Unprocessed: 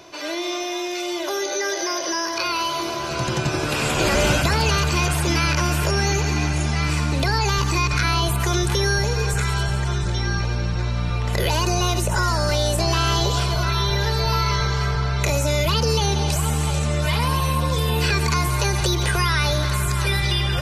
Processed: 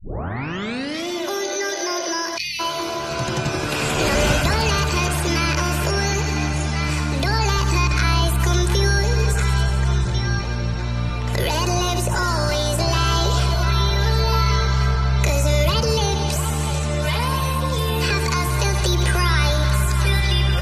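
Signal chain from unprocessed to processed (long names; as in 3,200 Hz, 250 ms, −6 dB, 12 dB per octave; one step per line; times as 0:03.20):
turntable start at the beginning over 1.08 s
bucket-brigade delay 76 ms, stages 1,024, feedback 81%, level −13.5 dB
time-frequency box erased 0:02.38–0:02.60, 220–1,800 Hz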